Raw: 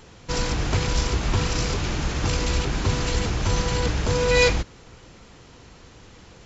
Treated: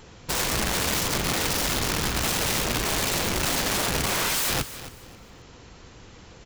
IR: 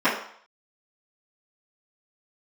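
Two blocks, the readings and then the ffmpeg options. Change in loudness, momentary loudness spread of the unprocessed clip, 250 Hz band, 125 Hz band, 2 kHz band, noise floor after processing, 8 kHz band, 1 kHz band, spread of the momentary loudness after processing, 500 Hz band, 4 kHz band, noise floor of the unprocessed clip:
-0.5 dB, 7 LU, -2.0 dB, -8.0 dB, 0.0 dB, -48 dBFS, n/a, +1.0 dB, 4 LU, -6.0 dB, +2.5 dB, -48 dBFS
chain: -af "aeval=exprs='(mod(10.6*val(0)+1,2)-1)/10.6':c=same,aecho=1:1:268|536|804:0.2|0.0499|0.0125"

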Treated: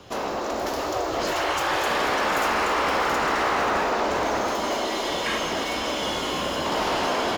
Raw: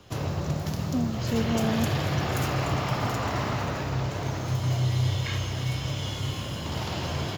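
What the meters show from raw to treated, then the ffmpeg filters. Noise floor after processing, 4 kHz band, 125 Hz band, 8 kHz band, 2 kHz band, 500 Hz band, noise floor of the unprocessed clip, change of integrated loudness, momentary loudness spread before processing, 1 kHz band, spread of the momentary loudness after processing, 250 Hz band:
-28 dBFS, +6.5 dB, -16.5 dB, +5.5 dB, +9.5 dB, +8.0 dB, -33 dBFS, +4.0 dB, 6 LU, +10.5 dB, 5 LU, -1.5 dB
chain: -filter_complex "[0:a]bandreject=f=47.82:t=h:w=4,bandreject=f=95.64:t=h:w=4,bandreject=f=143.46:t=h:w=4,bandreject=f=191.28:t=h:w=4,bandreject=f=239.1:t=h:w=4,bandreject=f=286.92:t=h:w=4,bandreject=f=334.74:t=h:w=4,afftfilt=real='re*lt(hypot(re,im),0.112)':imag='im*lt(hypot(re,im),0.112)':win_size=1024:overlap=0.75,acrossover=split=920[a][b];[b]asoftclip=type=tanh:threshold=-31.5dB[c];[a][c]amix=inputs=2:normalize=0,dynaudnorm=f=410:g=3:m=4dB,asplit=2[d][e];[e]highpass=f=720:p=1,volume=12dB,asoftclip=type=tanh:threshold=-18.5dB[f];[d][f]amix=inputs=2:normalize=0,lowpass=f=6.4k:p=1,volume=-6dB,asplit=2[g][h];[h]adynamicsmooth=sensitivity=1.5:basefreq=1.1k,volume=1dB[i];[g][i]amix=inputs=2:normalize=0"

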